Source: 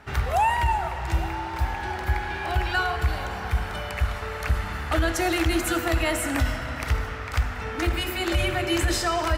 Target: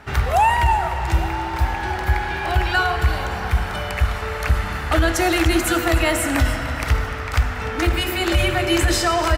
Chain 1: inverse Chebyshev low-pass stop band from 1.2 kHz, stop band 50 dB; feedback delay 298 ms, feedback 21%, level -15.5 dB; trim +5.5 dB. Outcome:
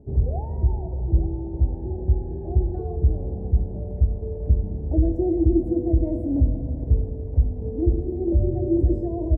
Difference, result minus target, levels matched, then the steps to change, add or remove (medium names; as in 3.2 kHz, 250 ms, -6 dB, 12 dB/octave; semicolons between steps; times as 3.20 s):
1 kHz band -19.5 dB
remove: inverse Chebyshev low-pass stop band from 1.2 kHz, stop band 50 dB